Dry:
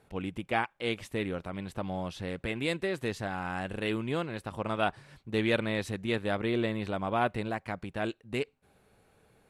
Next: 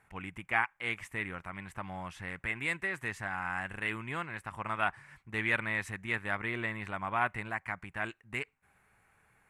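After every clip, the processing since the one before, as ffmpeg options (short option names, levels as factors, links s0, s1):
-af "equalizer=f=250:t=o:w=1:g=-4,equalizer=f=500:t=o:w=1:g=-9,equalizer=f=1000:t=o:w=1:g=6,equalizer=f=2000:t=o:w=1:g=12,equalizer=f=4000:t=o:w=1:g=-10,equalizer=f=8000:t=o:w=1:g=5,volume=0.562"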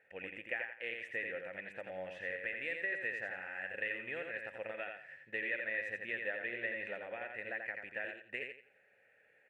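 -filter_complex "[0:a]acompressor=threshold=0.0158:ratio=6,asplit=3[s0][s1][s2];[s0]bandpass=f=530:t=q:w=8,volume=1[s3];[s1]bandpass=f=1840:t=q:w=8,volume=0.501[s4];[s2]bandpass=f=2480:t=q:w=8,volume=0.355[s5];[s3][s4][s5]amix=inputs=3:normalize=0,asplit=2[s6][s7];[s7]aecho=0:1:86|172|258|344:0.562|0.157|0.0441|0.0123[s8];[s6][s8]amix=inputs=2:normalize=0,volume=3.55"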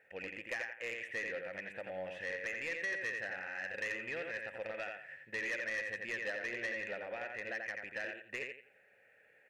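-af "asoftclip=type=tanh:threshold=0.02,volume=1.33"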